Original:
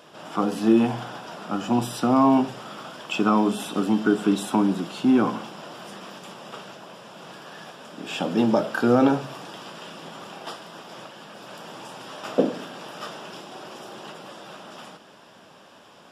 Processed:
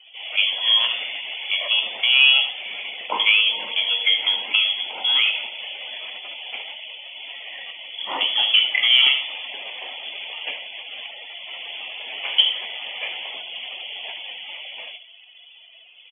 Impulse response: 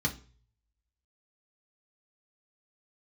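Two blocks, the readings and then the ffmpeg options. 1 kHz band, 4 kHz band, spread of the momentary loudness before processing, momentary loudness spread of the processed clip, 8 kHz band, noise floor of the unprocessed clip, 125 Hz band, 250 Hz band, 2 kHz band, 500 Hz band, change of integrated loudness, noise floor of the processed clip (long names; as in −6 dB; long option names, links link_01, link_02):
−7.0 dB, +21.5 dB, 21 LU, 18 LU, below −40 dB, −50 dBFS, below −30 dB, below −30 dB, +13.5 dB, −15.0 dB, +4.0 dB, −48 dBFS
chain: -filter_complex "[0:a]aecho=1:1:74:0.282,acrossover=split=380|1500|2400[link_01][link_02][link_03][link_04];[link_01]acompressor=threshold=-36dB:ratio=6[link_05];[link_04]aecho=1:1:1.4:0.42[link_06];[link_05][link_02][link_03][link_06]amix=inputs=4:normalize=0,afftdn=noise_reduction=19:noise_floor=-45,acontrast=79,lowpass=frequency=3100:width_type=q:width=0.5098,lowpass=frequency=3100:width_type=q:width=0.6013,lowpass=frequency=3100:width_type=q:width=0.9,lowpass=frequency=3100:width_type=q:width=2.563,afreqshift=-3600,highpass=frequency=250:width=0.5412,highpass=frequency=250:width=1.3066"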